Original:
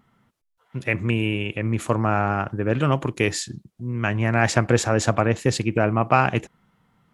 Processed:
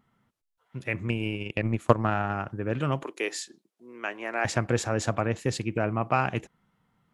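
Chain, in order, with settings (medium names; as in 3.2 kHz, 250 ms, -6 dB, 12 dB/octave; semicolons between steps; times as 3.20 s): 1.08–2.34 s: transient shaper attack +11 dB, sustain -8 dB; 3.03–4.45 s: high-pass 330 Hz 24 dB/octave; trim -7 dB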